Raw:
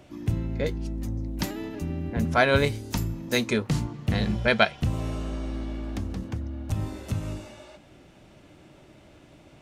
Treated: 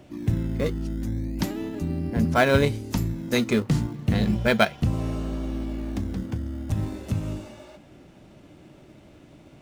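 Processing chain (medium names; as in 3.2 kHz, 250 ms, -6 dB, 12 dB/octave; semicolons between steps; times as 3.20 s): peaking EQ 220 Hz +4 dB 1.8 oct; in parallel at -11.5 dB: decimation with a swept rate 18×, swing 100% 0.35 Hz; on the sum: trim -1.5 dB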